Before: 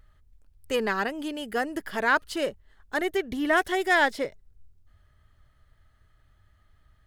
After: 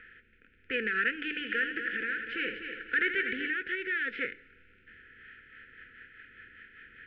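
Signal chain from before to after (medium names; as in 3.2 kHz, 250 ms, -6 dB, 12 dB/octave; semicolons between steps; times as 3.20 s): spectral levelling over time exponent 0.6; elliptic low-pass 2.8 kHz, stop band 80 dB; tilt shelf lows -4.5 dB, about 890 Hz; peak limiter -15.5 dBFS, peak gain reduction 9 dB; rotary cabinet horn 0.6 Hz, later 5 Hz, at 4.80 s; brick-wall FIR band-stop 530–1300 Hz; 1.16–3.48 s: multi-head delay 82 ms, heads first and third, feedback 49%, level -9 dB; reverberation RT60 1.0 s, pre-delay 3 ms, DRR 13.5 dB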